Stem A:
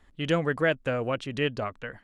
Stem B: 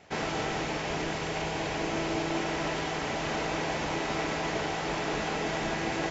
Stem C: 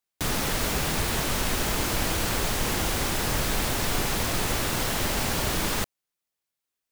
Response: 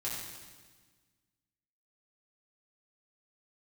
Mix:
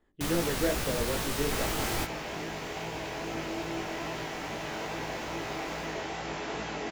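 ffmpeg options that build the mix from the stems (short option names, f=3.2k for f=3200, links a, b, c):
-filter_complex "[0:a]equalizer=f=370:w=0.75:g=13.5,volume=-11.5dB,asplit=3[a][b][c];[b]volume=-18dB[d];[1:a]aeval=exprs='val(0)+0.00891*(sin(2*PI*60*n/s)+sin(2*PI*2*60*n/s)/2+sin(2*PI*3*60*n/s)/3+sin(2*PI*4*60*n/s)/4+sin(2*PI*5*60*n/s)/5)':c=same,highpass=f=120:p=1,adelay=1400,volume=-1.5dB[e];[2:a]volume=-3dB,asplit=2[f][g];[g]volume=-23.5dB[h];[c]apad=whole_len=304932[i];[f][i]sidechaingate=range=-33dB:threshold=-55dB:ratio=16:detection=peak[j];[3:a]atrim=start_sample=2205[k];[d][h]amix=inputs=2:normalize=0[l];[l][k]afir=irnorm=-1:irlink=0[m];[a][e][j][m]amix=inputs=4:normalize=0,flanger=delay=17.5:depth=4.3:speed=2.4"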